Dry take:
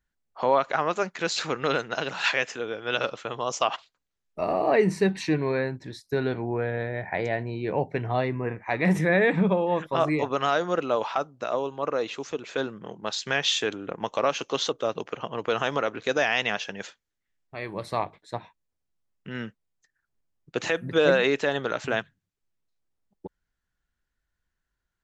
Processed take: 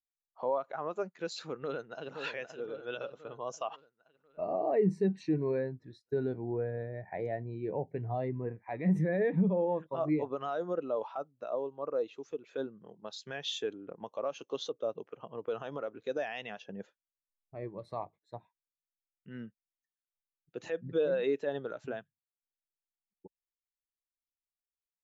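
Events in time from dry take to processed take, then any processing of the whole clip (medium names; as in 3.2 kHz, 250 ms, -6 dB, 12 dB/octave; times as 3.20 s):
1.54–2.14 s: echo throw 520 ms, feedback 60%, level -7 dB
16.62–17.69 s: tilt shelf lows +6 dB, about 1.5 kHz
whole clip: dynamic bell 1.9 kHz, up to -4 dB, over -39 dBFS, Q 0.76; peak limiter -16.5 dBFS; spectral contrast expander 1.5:1; trim -2 dB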